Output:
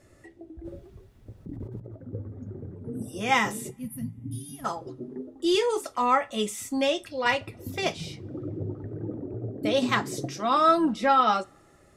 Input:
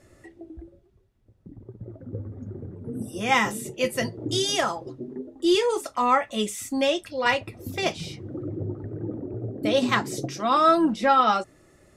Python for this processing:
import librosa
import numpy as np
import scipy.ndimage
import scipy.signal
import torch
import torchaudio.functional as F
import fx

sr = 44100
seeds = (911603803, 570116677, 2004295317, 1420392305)

y = fx.over_compress(x, sr, threshold_db=-47.0, ratio=-1.0, at=(0.61, 1.94), fade=0.02)
y = fx.spec_box(y, sr, start_s=3.71, length_s=0.94, low_hz=280.0, high_hz=9400.0, gain_db=-27)
y = fx.rev_double_slope(y, sr, seeds[0], early_s=0.31, late_s=2.6, knee_db=-28, drr_db=16.5)
y = y * 10.0 ** (-2.0 / 20.0)